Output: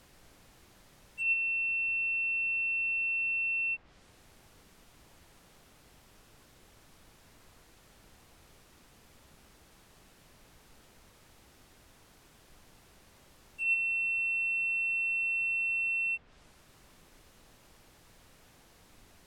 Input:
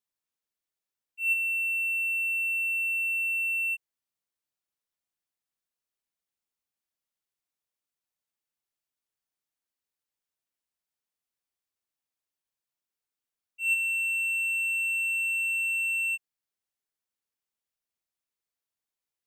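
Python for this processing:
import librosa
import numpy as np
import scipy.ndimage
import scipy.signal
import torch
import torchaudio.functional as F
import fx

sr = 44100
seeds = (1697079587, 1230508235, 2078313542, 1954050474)

y = fx.dmg_noise_colour(x, sr, seeds[0], colour='pink', level_db=-60.0)
y = fx.env_lowpass_down(y, sr, base_hz=2500.0, full_db=-31.0)
y = F.gain(torch.from_numpy(y), 1.0).numpy()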